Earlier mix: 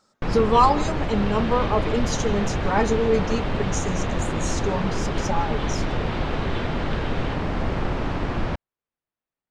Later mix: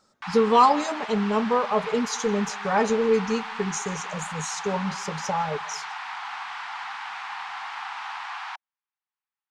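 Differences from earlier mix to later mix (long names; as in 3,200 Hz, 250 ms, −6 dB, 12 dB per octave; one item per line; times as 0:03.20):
first sound: add Butterworth high-pass 770 Hz 96 dB per octave
second sound: muted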